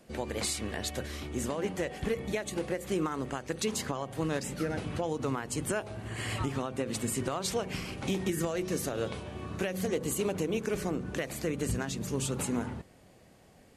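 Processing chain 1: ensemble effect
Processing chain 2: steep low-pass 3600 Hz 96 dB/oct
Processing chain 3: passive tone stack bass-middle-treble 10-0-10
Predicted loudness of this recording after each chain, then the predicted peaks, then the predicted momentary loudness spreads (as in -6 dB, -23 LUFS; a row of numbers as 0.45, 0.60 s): -36.5, -34.5, -41.0 LUFS; -20.0, -19.5, -22.0 dBFS; 5, 5, 10 LU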